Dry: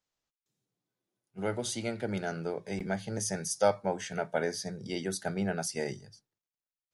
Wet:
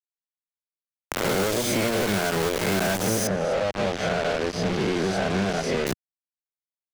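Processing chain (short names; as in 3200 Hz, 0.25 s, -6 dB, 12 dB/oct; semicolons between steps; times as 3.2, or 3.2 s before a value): spectral swells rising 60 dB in 1.05 s; high shelf 4100 Hz -6.5 dB; compressor 20:1, threshold -32 dBFS, peak gain reduction 14.5 dB; notch comb 930 Hz; companded quantiser 2-bit; 3.27–5.87 tape spacing loss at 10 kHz 26 dB; three-band squash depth 70%; gain +5.5 dB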